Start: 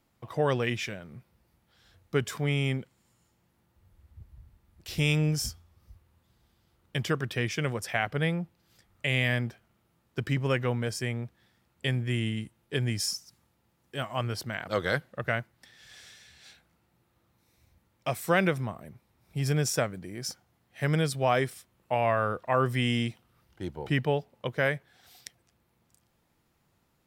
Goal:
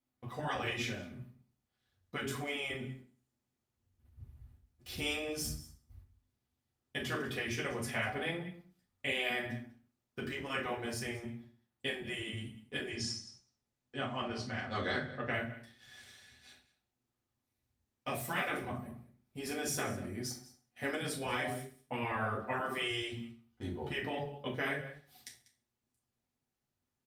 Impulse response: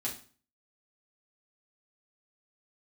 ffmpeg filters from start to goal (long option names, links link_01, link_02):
-filter_complex "[0:a]agate=range=-14dB:threshold=-56dB:ratio=16:detection=peak,asettb=1/sr,asplit=3[link_01][link_02][link_03];[link_01]atrim=end=12.894[link_04];[link_02]atrim=start=12.89:end=15.33,asetpts=PTS-STARTPTS,afade=type=in:duration=0.004:curve=qsin,afade=type=out:start_time=2.436:duration=0.004:curve=qsin,lowpass=frequency=6900:width=0.5412,lowpass=frequency=6900:width=1.3066[link_05];[link_03]atrim=start=15.326[link_06];[link_04][link_05]acrossfade=duration=0.004:curve1=hsin:curve2=qsin[link_07];[link_07][link_06]acrossfade=duration=0.004:curve1=qsin:curve2=hsin,aecho=1:1:194:0.126[link_08];[1:a]atrim=start_sample=2205[link_09];[link_08][link_09]afir=irnorm=-1:irlink=0,afftfilt=real='re*lt(hypot(re,im),0.251)':imag='im*lt(hypot(re,im),0.251)':win_size=1024:overlap=0.75,volume=-5dB" -ar 48000 -c:a libopus -b:a 48k